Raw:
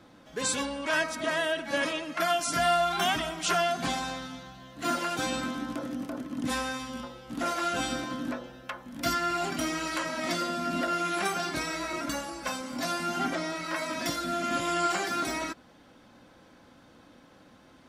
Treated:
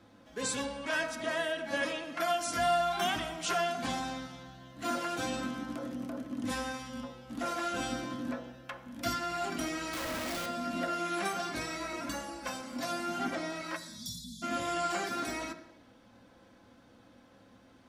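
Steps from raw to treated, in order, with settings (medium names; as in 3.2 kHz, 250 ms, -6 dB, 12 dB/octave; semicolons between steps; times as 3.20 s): 9.93–10.46 s: Schmitt trigger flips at -42 dBFS; 13.76–14.42 s: spectral selection erased 250–3200 Hz; on a send: reverberation RT60 0.85 s, pre-delay 3 ms, DRR 7 dB; on the sum: trim -5.5 dB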